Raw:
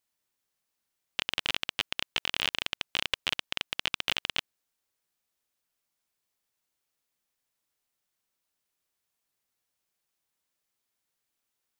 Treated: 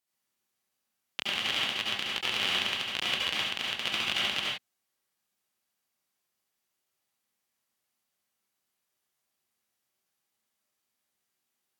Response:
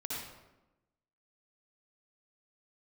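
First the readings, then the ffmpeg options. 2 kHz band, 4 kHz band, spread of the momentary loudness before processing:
+2.0 dB, +2.5 dB, 4 LU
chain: -filter_complex "[0:a]highpass=98[a];[1:a]atrim=start_sample=2205,afade=t=out:st=0.2:d=0.01,atrim=end_sample=9261,asetrate=37044,aresample=44100[b];[a][b]afir=irnorm=-1:irlink=0"

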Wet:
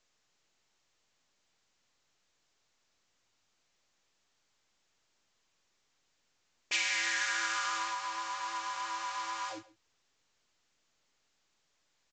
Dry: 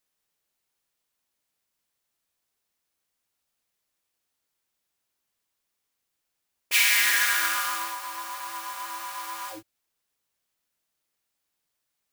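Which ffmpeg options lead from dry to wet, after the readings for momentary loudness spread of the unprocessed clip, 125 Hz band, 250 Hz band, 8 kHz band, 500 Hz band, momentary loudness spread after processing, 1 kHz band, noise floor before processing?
16 LU, n/a, -3.0 dB, -9.5 dB, -2.5 dB, 8 LU, -3.0 dB, -81 dBFS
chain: -filter_complex "[0:a]acrossover=split=860|6200[a][b][c];[a]acompressor=threshold=-42dB:ratio=4[d];[b]acompressor=threshold=-31dB:ratio=4[e];[c]acompressor=threshold=-29dB:ratio=4[f];[d][e][f]amix=inputs=3:normalize=0,asplit=2[g][h];[h]adelay=134.1,volume=-20dB,highshelf=f=4k:g=-3.02[i];[g][i]amix=inputs=2:normalize=0,volume=-1dB" -ar 16000 -c:a pcm_mulaw

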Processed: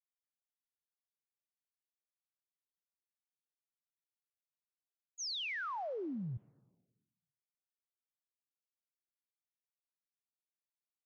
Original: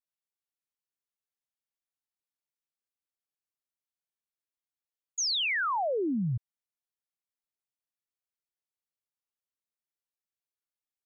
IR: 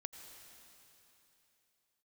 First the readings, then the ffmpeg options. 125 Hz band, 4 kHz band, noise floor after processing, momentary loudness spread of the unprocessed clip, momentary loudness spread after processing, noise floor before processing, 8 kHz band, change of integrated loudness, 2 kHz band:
-10.5 dB, -10.5 dB, under -85 dBFS, 9 LU, 9 LU, under -85 dBFS, n/a, -11.0 dB, -10.5 dB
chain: -filter_complex "[0:a]agate=range=-33dB:threshold=-16dB:ratio=3:detection=peak,asplit=2[a][b];[1:a]atrim=start_sample=2205,asetrate=83790,aresample=44100[c];[b][c]afir=irnorm=-1:irlink=0,volume=-9dB[d];[a][d]amix=inputs=2:normalize=0,volume=10dB"

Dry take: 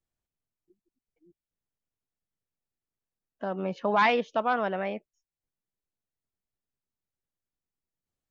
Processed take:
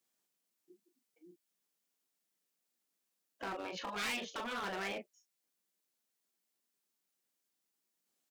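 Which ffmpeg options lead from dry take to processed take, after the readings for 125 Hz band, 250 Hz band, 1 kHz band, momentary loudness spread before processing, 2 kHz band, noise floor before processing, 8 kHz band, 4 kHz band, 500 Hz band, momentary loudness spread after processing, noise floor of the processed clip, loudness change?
-15.0 dB, -13.0 dB, -15.0 dB, 13 LU, -9.0 dB, under -85 dBFS, n/a, -3.0 dB, -15.5 dB, 7 LU, -85 dBFS, -12.0 dB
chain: -filter_complex "[0:a]acompressor=threshold=-34dB:ratio=2.5,asplit=2[a][b];[b]aecho=0:1:22|39:0.299|0.355[c];[a][c]amix=inputs=2:normalize=0,afftfilt=real='re*lt(hypot(re,im),0.0794)':imag='im*lt(hypot(re,im),0.0794)':win_size=1024:overlap=0.75,highpass=f=200:w=0.5412,highpass=f=200:w=1.3066,asoftclip=type=hard:threshold=-39.5dB,highshelf=f=2.7k:g=8.5,volume=2.5dB"

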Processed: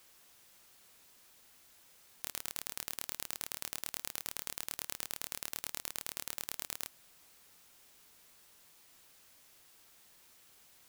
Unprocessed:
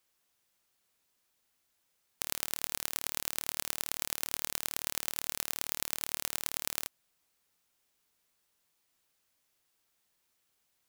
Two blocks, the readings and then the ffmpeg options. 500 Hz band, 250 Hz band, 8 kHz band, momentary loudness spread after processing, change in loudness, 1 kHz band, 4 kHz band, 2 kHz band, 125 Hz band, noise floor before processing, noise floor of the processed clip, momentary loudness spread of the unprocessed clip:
-5.5 dB, -5.5 dB, -5.5 dB, 20 LU, -5.5 dB, -5.5 dB, -5.5 dB, -5.5 dB, -5.5 dB, -77 dBFS, -65 dBFS, 1 LU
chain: -af "alimiter=limit=-8dB:level=0:latency=1:release=83,aeval=exprs='(mod(10*val(0)+1,2)-1)/10':c=same,aeval=exprs='0.1*(cos(1*acos(clip(val(0)/0.1,-1,1)))-cos(1*PI/2))+0.02*(cos(2*acos(clip(val(0)/0.1,-1,1)))-cos(2*PI/2))':c=same,volume=14.5dB"

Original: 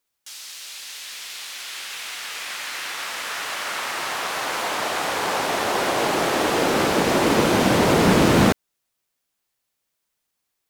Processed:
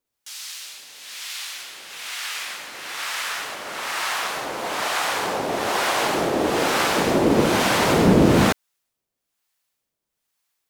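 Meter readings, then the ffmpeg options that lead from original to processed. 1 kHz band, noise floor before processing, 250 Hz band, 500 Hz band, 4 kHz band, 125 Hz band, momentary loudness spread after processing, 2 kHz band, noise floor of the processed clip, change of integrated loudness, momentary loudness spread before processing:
-0.5 dB, -78 dBFS, +0.5 dB, -0.5 dB, -0.5 dB, +0.5 dB, 17 LU, -0.5 dB, -82 dBFS, 0.0 dB, 16 LU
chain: -filter_complex "[0:a]acrossover=split=700[a][b];[a]aeval=exprs='val(0)*(1-0.7/2+0.7/2*cos(2*PI*1.1*n/s))':c=same[c];[b]aeval=exprs='val(0)*(1-0.7/2-0.7/2*cos(2*PI*1.1*n/s))':c=same[d];[c][d]amix=inputs=2:normalize=0,volume=3dB"

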